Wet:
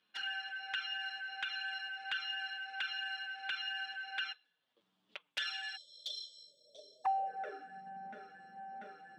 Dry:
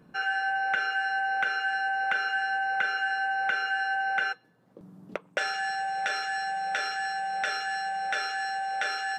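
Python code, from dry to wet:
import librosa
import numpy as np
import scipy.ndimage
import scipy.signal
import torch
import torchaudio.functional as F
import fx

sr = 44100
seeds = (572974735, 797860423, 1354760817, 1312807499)

y = fx.filter_sweep_bandpass(x, sr, from_hz=3300.0, to_hz=230.0, start_s=6.22, end_s=7.76, q=4.5)
y = fx.spec_erase(y, sr, start_s=5.76, length_s=1.29, low_hz=650.0, high_hz=3100.0)
y = fx.env_flanger(y, sr, rest_ms=9.7, full_db=-37.0)
y = y * 10.0 ** (7.5 / 20.0)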